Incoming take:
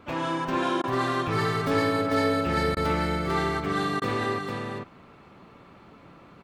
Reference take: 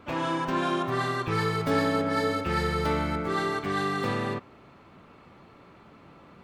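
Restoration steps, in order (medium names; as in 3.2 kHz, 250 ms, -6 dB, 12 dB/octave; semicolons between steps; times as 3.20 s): interpolate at 0.82/2.75/4.00 s, 16 ms; inverse comb 447 ms -4 dB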